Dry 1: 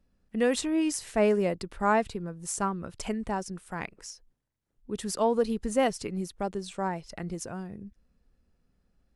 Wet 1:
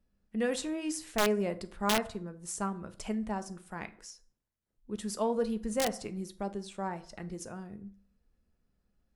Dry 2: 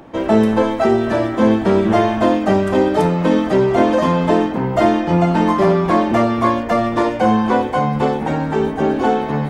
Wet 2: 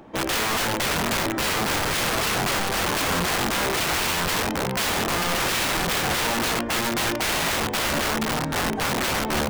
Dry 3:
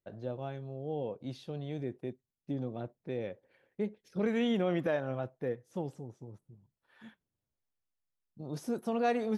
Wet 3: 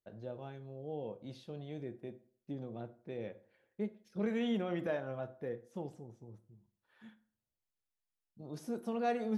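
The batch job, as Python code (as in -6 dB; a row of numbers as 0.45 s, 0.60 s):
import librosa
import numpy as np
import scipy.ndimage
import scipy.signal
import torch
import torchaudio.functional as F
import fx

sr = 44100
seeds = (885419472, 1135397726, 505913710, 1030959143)

y = fx.rev_fdn(x, sr, rt60_s=0.51, lf_ratio=0.9, hf_ratio=0.65, size_ms=28.0, drr_db=9.5)
y = (np.mod(10.0 ** (13.5 / 20.0) * y + 1.0, 2.0) - 1.0) / 10.0 ** (13.5 / 20.0)
y = y * librosa.db_to_amplitude(-5.5)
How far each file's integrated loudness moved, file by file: -4.5 LU, -7.0 LU, -4.5 LU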